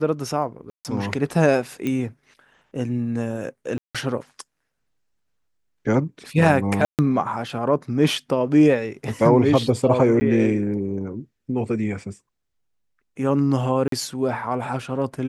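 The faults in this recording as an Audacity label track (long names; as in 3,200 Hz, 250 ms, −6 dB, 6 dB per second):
0.700000	0.850000	drop-out 148 ms
1.870000	1.870000	click −14 dBFS
3.780000	3.950000	drop-out 166 ms
6.850000	6.990000	drop-out 138 ms
10.200000	10.210000	drop-out 10 ms
13.880000	13.920000	drop-out 43 ms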